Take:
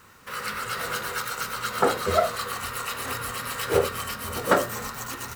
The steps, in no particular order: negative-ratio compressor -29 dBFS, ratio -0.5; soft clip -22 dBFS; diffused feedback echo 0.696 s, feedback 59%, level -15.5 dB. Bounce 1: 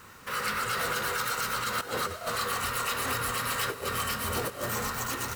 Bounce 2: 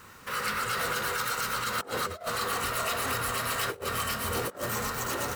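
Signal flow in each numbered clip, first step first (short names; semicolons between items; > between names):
negative-ratio compressor > diffused feedback echo > soft clip; diffused feedback echo > negative-ratio compressor > soft clip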